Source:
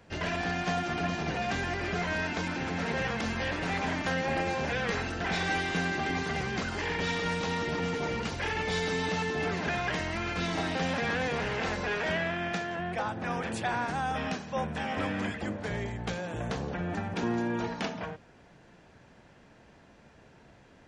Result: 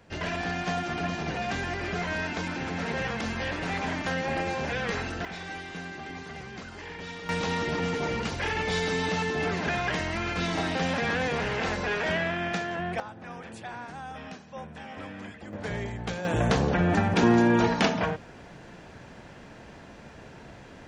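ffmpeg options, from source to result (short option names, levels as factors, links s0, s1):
-af "asetnsamples=n=441:p=0,asendcmd='5.25 volume volume -8.5dB;7.29 volume volume 2.5dB;13 volume volume -8.5dB;15.53 volume volume 1dB;16.25 volume volume 10dB',volume=1.06"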